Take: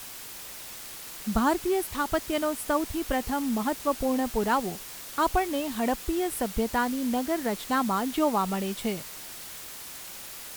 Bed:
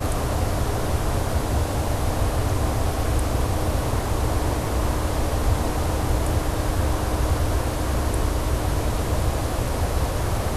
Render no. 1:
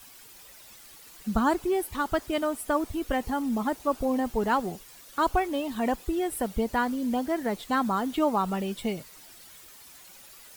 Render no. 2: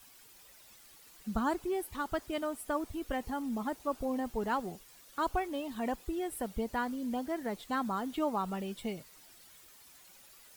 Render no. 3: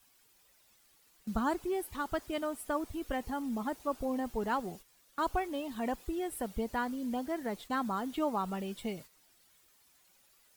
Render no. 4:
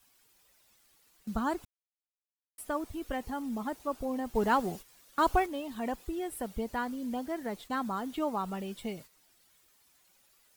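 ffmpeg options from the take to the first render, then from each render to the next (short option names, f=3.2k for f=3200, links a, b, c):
-af "afftdn=nr=11:nf=-42"
-af "volume=-7.5dB"
-af "agate=range=-9dB:threshold=-49dB:ratio=16:detection=peak"
-filter_complex "[0:a]asplit=5[a][b][c][d][e];[a]atrim=end=1.65,asetpts=PTS-STARTPTS,afade=t=out:st=1.646:d=0.004:c=hsin[f];[b]atrim=start=1.65:end=2.58,asetpts=PTS-STARTPTS,volume=0[g];[c]atrim=start=2.58:end=4.352,asetpts=PTS-STARTPTS,afade=t=in:d=0.004:c=hsin[h];[d]atrim=start=4.348:end=5.462,asetpts=PTS-STARTPTS,volume=6dB[i];[e]atrim=start=5.458[j];[f][g][h]concat=n=3:v=0:a=1[k];[k][i]acrossfade=d=0.004:c1=hsin:c2=hsin[l];[l][j]acrossfade=d=0.004:c1=hsin:c2=hsin"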